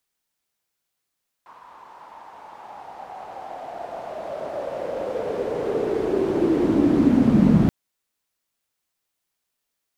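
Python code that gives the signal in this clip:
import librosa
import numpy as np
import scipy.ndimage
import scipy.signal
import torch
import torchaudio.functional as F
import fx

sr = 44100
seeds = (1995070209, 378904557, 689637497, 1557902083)

y = fx.riser_noise(sr, seeds[0], length_s=6.23, colour='pink', kind='bandpass', start_hz=1000.0, end_hz=180.0, q=5.9, swell_db=34.0, law='linear')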